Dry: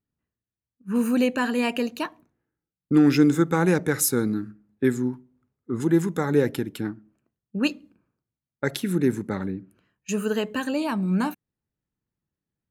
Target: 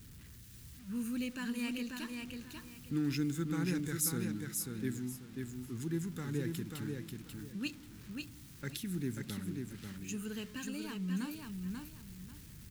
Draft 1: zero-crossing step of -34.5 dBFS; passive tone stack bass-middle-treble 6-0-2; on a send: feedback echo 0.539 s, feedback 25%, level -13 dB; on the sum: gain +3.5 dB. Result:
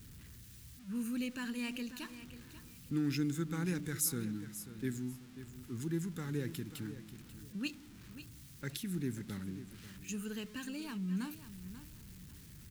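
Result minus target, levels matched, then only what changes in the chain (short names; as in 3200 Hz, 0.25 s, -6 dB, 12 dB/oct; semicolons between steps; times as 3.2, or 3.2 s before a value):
echo-to-direct -8.5 dB
change: feedback echo 0.539 s, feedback 25%, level -4.5 dB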